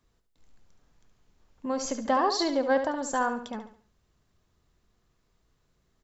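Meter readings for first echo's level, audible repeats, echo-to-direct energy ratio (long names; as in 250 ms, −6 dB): −9.0 dB, 3, −8.5 dB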